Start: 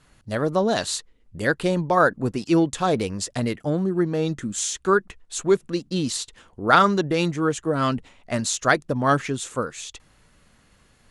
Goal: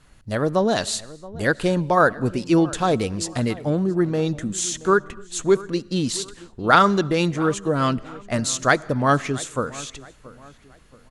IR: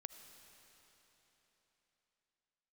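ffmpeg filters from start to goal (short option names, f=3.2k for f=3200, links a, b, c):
-filter_complex "[0:a]lowshelf=f=64:g=6.5,asplit=2[a][b];[b]adelay=676,lowpass=f=2.5k:p=1,volume=-19dB,asplit=2[c][d];[d]adelay=676,lowpass=f=2.5k:p=1,volume=0.39,asplit=2[e][f];[f]adelay=676,lowpass=f=2.5k:p=1,volume=0.39[g];[a][c][e][g]amix=inputs=4:normalize=0,asplit=2[h][i];[1:a]atrim=start_sample=2205,afade=t=out:st=0.34:d=0.01,atrim=end_sample=15435[j];[i][j]afir=irnorm=-1:irlink=0,volume=-5dB[k];[h][k]amix=inputs=2:normalize=0,volume=-1dB"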